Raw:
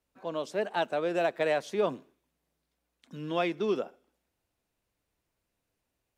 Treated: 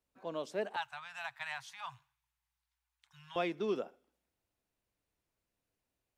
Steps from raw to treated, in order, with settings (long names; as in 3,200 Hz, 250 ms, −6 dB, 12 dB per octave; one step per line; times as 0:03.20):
0:00.76–0:03.36: Chebyshev band-stop filter 130–840 Hz, order 4
level −5.5 dB